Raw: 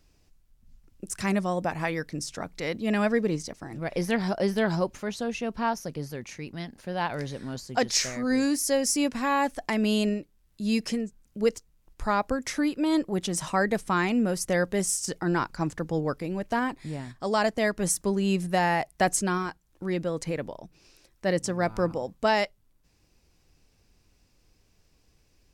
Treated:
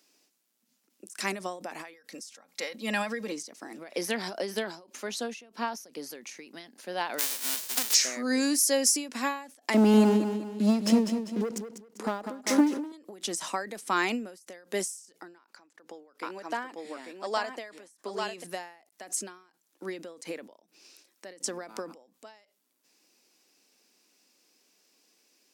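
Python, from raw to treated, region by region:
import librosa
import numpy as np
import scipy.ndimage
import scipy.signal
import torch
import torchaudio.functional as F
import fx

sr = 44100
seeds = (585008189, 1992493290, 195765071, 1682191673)

y = fx.chain(x, sr, fx.peak_eq(hz=300.0, db=-12.0, octaves=0.45),
    fx.comb(ms=3.7, depth=0.59), at=(1.93, 3.32))
y = fx.envelope_flatten(y, sr, power=0.1, at=(7.18, 7.93), fade=0.02)
y = fx.highpass(y, sr, hz=56.0, slope=12, at=(7.18, 7.93), fade=0.02)
y = fx.chain(y, sr, fx.tilt_shelf(db=9.0, hz=770.0),
    fx.leveller(passes=2),
    fx.echo_feedback(ms=197, feedback_pct=39, wet_db=-8), at=(9.74, 12.92))
y = fx.chain(y, sr, fx.highpass(hz=540.0, slope=6),
    fx.high_shelf(hz=4200.0, db=-9.0),
    fx.echo_single(ms=845, db=-5.0), at=(15.38, 18.44))
y = scipy.signal.sosfilt(scipy.signal.butter(6, 230.0, 'highpass', fs=sr, output='sos'), y)
y = fx.high_shelf(y, sr, hz=2700.0, db=8.5)
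y = fx.end_taper(y, sr, db_per_s=110.0)
y = F.gain(torch.from_numpy(y), -2.0).numpy()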